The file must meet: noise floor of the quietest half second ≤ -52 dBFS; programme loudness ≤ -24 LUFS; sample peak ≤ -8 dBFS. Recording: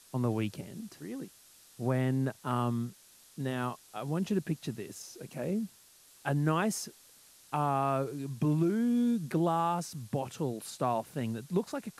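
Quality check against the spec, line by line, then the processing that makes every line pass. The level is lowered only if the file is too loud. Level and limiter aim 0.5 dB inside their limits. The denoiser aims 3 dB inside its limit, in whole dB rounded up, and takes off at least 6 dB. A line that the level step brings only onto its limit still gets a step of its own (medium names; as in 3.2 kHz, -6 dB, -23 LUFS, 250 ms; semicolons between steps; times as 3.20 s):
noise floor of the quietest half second -59 dBFS: pass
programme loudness -33.0 LUFS: pass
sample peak -15.5 dBFS: pass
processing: none needed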